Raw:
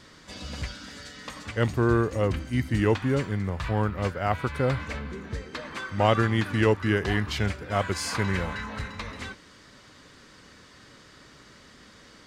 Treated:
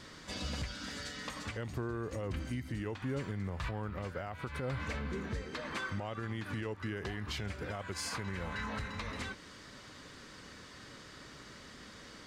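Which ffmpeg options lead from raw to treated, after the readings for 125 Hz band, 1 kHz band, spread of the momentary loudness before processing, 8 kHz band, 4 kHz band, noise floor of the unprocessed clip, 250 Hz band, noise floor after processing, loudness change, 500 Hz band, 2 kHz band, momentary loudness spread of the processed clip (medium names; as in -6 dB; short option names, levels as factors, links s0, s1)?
-12.0 dB, -12.5 dB, 16 LU, -6.5 dB, -7.5 dB, -52 dBFS, -12.0 dB, -53 dBFS, -12.5 dB, -14.0 dB, -9.5 dB, 13 LU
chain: -af "acompressor=threshold=0.0501:ratio=6,alimiter=level_in=1.68:limit=0.0631:level=0:latency=1:release=214,volume=0.596"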